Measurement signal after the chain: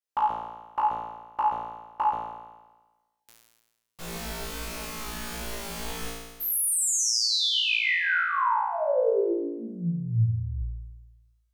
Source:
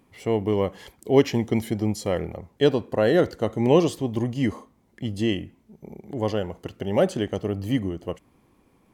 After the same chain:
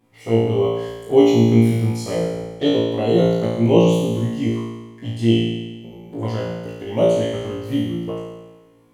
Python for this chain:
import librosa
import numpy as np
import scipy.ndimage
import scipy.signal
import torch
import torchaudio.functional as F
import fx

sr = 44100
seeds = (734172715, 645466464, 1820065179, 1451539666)

y = fx.env_flanger(x, sr, rest_ms=8.2, full_db=-19.0)
y = fx.room_flutter(y, sr, wall_m=3.0, rt60_s=1.2)
y = y * 10.0 ** (-1.0 / 20.0)